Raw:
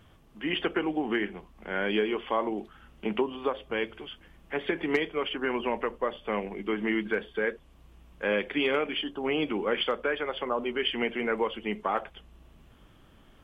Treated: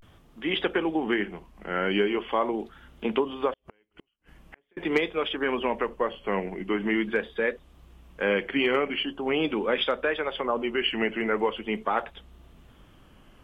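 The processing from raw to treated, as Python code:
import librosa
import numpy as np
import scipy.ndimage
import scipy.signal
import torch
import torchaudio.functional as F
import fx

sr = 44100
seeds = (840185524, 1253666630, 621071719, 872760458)

y = fx.gate_flip(x, sr, shuts_db=-33.0, range_db=-40, at=(3.55, 4.75))
y = fx.vibrato(y, sr, rate_hz=0.43, depth_cents=98.0)
y = y * 10.0 ** (2.5 / 20.0)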